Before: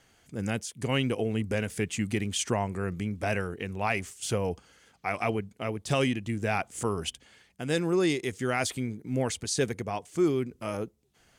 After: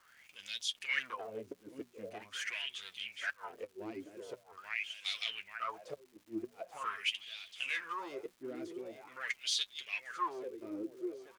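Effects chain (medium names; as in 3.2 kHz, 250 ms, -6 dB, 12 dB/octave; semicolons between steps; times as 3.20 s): feedback delay 834 ms, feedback 55%, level -13 dB; saturation -28 dBFS, distortion -9 dB; wah-wah 0.44 Hz 310–3600 Hz, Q 9.1; inverted gate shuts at -37 dBFS, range -31 dB; tilt EQ +3.5 dB/octave; flange 1.2 Hz, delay 5.4 ms, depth 5.4 ms, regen +37%; graphic EQ with 31 bands 100 Hz +6 dB, 800 Hz -8 dB, 8 kHz -5 dB; crackle 470 per s -70 dBFS; hum notches 60/120/180/240 Hz; trim +15 dB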